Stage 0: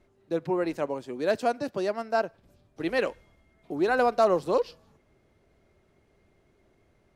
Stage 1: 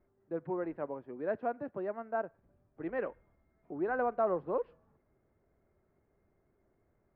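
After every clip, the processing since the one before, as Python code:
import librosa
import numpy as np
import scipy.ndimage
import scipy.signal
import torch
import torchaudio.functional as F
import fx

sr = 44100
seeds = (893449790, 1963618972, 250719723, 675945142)

y = scipy.signal.sosfilt(scipy.signal.butter(4, 1800.0, 'lowpass', fs=sr, output='sos'), x)
y = y * librosa.db_to_amplitude(-8.5)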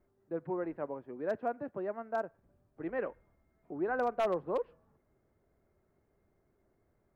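y = 10.0 ** (-23.0 / 20.0) * (np.abs((x / 10.0 ** (-23.0 / 20.0) + 3.0) % 4.0 - 2.0) - 1.0)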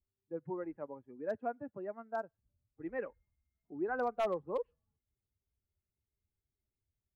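y = fx.bin_expand(x, sr, power=1.5)
y = y * librosa.db_to_amplitude(-1.0)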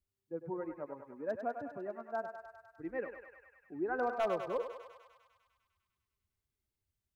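y = fx.echo_thinned(x, sr, ms=100, feedback_pct=77, hz=580.0, wet_db=-6.0)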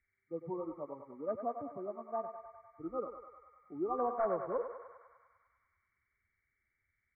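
y = fx.freq_compress(x, sr, knee_hz=1100.0, ratio=4.0)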